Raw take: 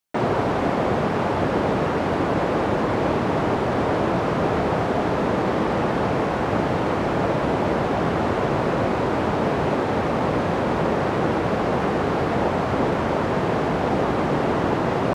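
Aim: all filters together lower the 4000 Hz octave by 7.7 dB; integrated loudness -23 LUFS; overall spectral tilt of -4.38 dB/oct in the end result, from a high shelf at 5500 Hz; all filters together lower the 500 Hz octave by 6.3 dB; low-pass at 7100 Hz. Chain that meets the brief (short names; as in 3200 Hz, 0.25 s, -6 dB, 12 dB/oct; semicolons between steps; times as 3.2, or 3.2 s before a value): LPF 7100 Hz; bell 500 Hz -8 dB; bell 4000 Hz -8 dB; high shelf 5500 Hz -6.5 dB; gain +2.5 dB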